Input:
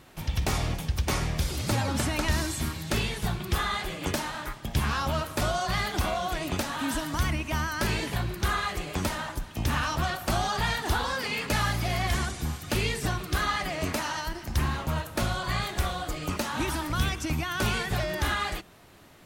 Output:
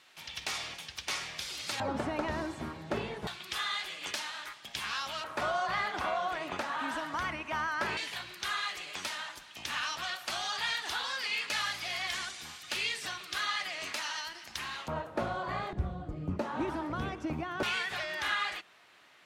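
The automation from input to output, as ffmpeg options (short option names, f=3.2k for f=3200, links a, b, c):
-af "asetnsamples=n=441:p=0,asendcmd='1.8 bandpass f 610;3.27 bandpass f 3500;5.24 bandpass f 1200;7.97 bandpass f 3400;14.88 bandpass f 600;15.73 bandpass f 150;16.39 bandpass f 490;17.63 bandpass f 2300',bandpass=f=3.4k:t=q:w=0.79:csg=0"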